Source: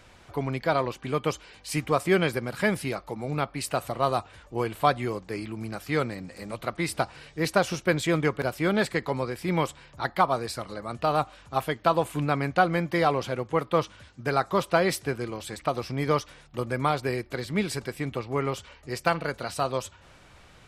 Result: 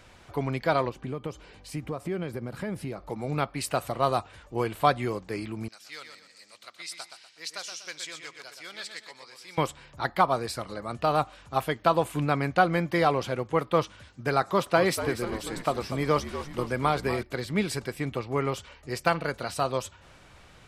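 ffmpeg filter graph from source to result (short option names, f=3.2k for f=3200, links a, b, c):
-filter_complex "[0:a]asettb=1/sr,asplit=3[a][b][c];[a]atrim=end=0.894[d];[b]atrim=start=0.89:end=3.1,asetpts=PTS-STARTPTS,afade=t=in:d=0.004:c=qsin,afade=t=out:st=2.206:d=0.004:c=qsin,acompressor=threshold=-37dB:ratio=2.5:attack=3.2:release=140:knee=1:detection=peak,tiltshelf=f=860:g=5.5[e];[c]atrim=start=3.096[f];[d][e]acrossfade=d=0.004:c1=hsin:c2=qsin[g];[g][f]acrossfade=d=0.004:c1=qsin:c2=hsin,asettb=1/sr,asplit=3[h][i][j];[h]atrim=end=5.684[k];[i]atrim=start=5.68:end=9.58,asetpts=PTS-STARTPTS,afade=t=in:d=0.004:c=qsin,afade=t=out:st=3.896:d=0.004:c=qsin,bandpass=f=5.4k:t=q:w=1.4,aecho=1:1:122|244|366|488:0.447|0.161|0.0579|0.0208,atrim=end_sample=171990[l];[j]atrim=start=9.576[m];[k][l]acrossfade=d=0.004:c1=hsin:c2=qsin[n];[n][m]acrossfade=d=0.004:c1=qsin:c2=hsin,asettb=1/sr,asplit=3[o][p][q];[o]atrim=end=14.424[r];[p]atrim=start=14.42:end=17.23,asetpts=PTS-STARTPTS,afade=t=in:d=0.004:c=qsin,afade=t=out:st=2.806:d=0.004:c=qsin,highpass=110,acompressor=mode=upward:threshold=-37dB:ratio=2.5:attack=3.2:release=140:knee=2.83:detection=peak,asplit=8[s][t][u][v][w][x][y][z];[t]adelay=242,afreqshift=-66,volume=-11dB[aa];[u]adelay=484,afreqshift=-132,volume=-15.2dB[ab];[v]adelay=726,afreqshift=-198,volume=-19.3dB[ac];[w]adelay=968,afreqshift=-264,volume=-23.5dB[ad];[x]adelay=1210,afreqshift=-330,volume=-27.6dB[ae];[y]adelay=1452,afreqshift=-396,volume=-31.8dB[af];[z]adelay=1694,afreqshift=-462,volume=-35.9dB[ag];[s][aa][ab][ac][ad][ae][af][ag]amix=inputs=8:normalize=0,atrim=end_sample=123921[ah];[q]atrim=start=17.226[ai];[r][ah]acrossfade=d=0.004:c1=hsin:c2=qsin[aj];[aj][ai]acrossfade=d=0.004:c1=qsin:c2=hsin"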